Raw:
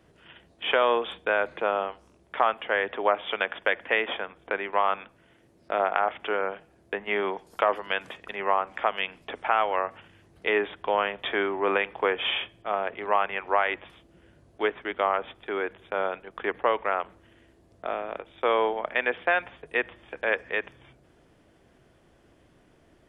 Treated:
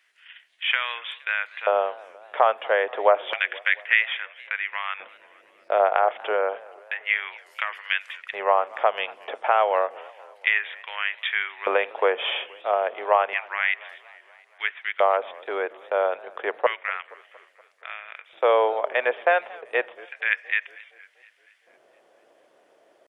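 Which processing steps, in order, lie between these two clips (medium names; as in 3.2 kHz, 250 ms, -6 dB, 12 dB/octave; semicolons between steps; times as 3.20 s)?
tempo 1×; LFO high-pass square 0.3 Hz 550–2000 Hz; modulated delay 235 ms, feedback 60%, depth 192 cents, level -22 dB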